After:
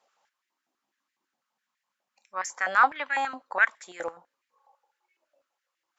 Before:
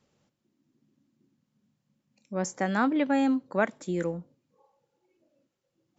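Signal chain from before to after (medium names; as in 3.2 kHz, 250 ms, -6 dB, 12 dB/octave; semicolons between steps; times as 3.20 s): Chebyshev shaper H 2 -17 dB, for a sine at -10.5 dBFS; step-sequenced high-pass 12 Hz 720–1900 Hz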